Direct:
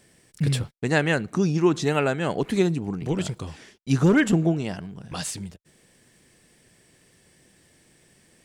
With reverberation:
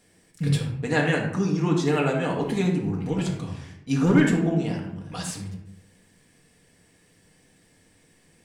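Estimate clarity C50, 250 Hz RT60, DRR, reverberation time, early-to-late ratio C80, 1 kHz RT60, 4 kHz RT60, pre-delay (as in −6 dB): 4.5 dB, 1.1 s, −2.0 dB, 0.75 s, 8.5 dB, 0.70 s, 0.45 s, 4 ms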